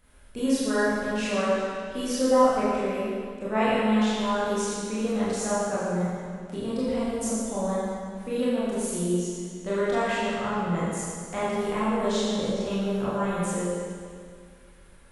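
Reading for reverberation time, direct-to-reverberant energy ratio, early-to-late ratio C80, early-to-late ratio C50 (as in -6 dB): 2.1 s, -10.5 dB, -1.5 dB, -4.0 dB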